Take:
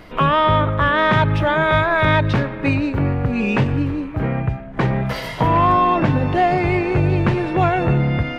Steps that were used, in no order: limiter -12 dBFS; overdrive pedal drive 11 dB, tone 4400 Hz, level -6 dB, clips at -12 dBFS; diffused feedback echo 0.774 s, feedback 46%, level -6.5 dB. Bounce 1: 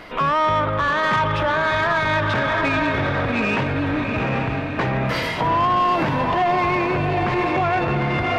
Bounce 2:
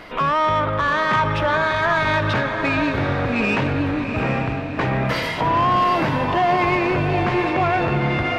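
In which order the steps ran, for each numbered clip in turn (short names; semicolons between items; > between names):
diffused feedback echo > limiter > overdrive pedal; limiter > overdrive pedal > diffused feedback echo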